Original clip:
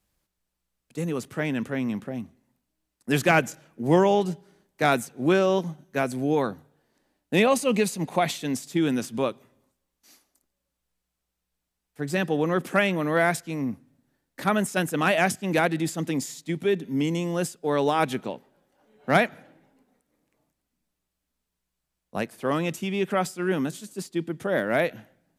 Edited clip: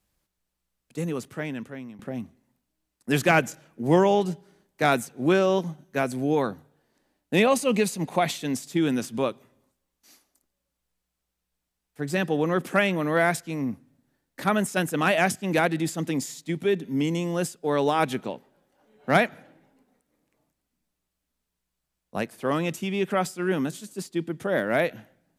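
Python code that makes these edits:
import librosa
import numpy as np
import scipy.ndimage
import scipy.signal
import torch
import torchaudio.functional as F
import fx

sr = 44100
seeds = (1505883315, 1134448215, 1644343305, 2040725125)

y = fx.edit(x, sr, fx.fade_out_to(start_s=1.0, length_s=0.99, floor_db=-18.0), tone=tone)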